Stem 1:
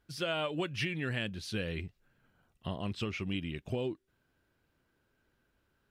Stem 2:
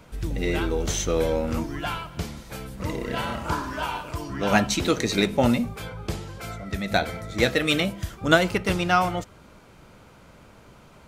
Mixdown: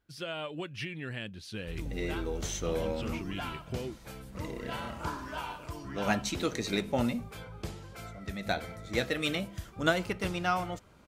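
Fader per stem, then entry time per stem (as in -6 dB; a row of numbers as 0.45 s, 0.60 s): -4.0 dB, -9.0 dB; 0.00 s, 1.55 s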